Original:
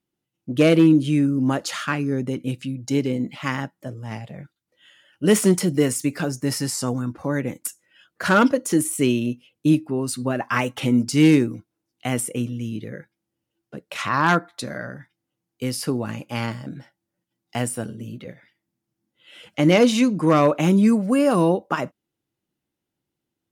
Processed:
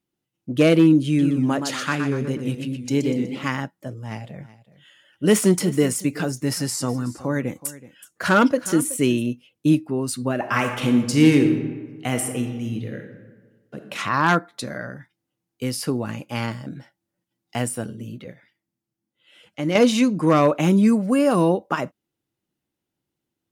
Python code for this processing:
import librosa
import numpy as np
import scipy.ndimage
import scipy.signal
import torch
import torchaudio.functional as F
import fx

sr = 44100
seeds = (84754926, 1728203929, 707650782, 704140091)

y = fx.echo_warbled(x, sr, ms=123, feedback_pct=42, rate_hz=2.8, cents=130, wet_db=-7.0, at=(1.06, 3.48))
y = fx.echo_single(y, sr, ms=374, db=-17.5, at=(4.07, 9.21), fade=0.02)
y = fx.reverb_throw(y, sr, start_s=10.33, length_s=3.52, rt60_s=1.4, drr_db=5.0)
y = fx.edit(y, sr, fx.fade_out_to(start_s=18.1, length_s=1.65, curve='qua', floor_db=-7.5), tone=tone)